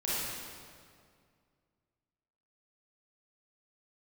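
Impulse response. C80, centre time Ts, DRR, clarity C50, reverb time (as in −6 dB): −2.0 dB, 151 ms, −9.5 dB, −5.5 dB, 2.1 s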